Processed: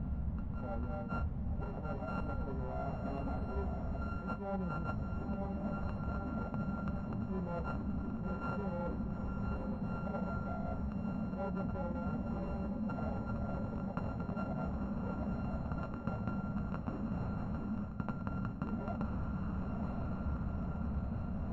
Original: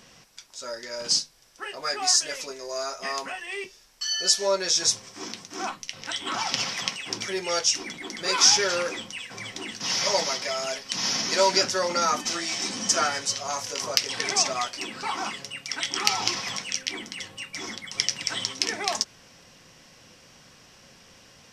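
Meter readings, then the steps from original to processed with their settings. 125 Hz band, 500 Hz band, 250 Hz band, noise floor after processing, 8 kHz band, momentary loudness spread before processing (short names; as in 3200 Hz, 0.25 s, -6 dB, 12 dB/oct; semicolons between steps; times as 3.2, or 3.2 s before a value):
+11.0 dB, -12.5 dB, +3.0 dB, -42 dBFS, under -40 dB, 14 LU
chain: sample sorter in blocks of 32 samples; on a send: diffused feedback echo 1.006 s, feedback 59%, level -8 dB; on the sum: vocal rider within 4 dB 2 s; added noise pink -45 dBFS; Chebyshev low-pass 630 Hz, order 2; resonant low shelf 270 Hz +8 dB, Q 3; reverse; compressor 6:1, threshold -36 dBFS, peak gain reduction 16 dB; reverse; bell 69 Hz +12.5 dB 0.64 oct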